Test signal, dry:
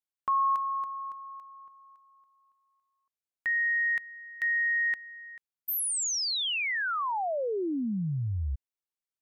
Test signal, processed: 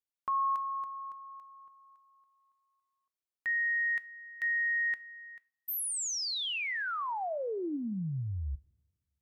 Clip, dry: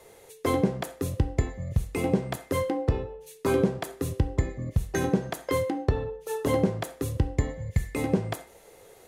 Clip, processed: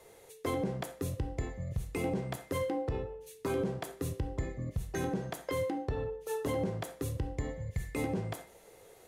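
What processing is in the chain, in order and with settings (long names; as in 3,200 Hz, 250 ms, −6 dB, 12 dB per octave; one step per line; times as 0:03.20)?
coupled-rooms reverb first 0.35 s, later 2 s, from −27 dB, DRR 15.5 dB
brickwall limiter −19.5 dBFS
level −4.5 dB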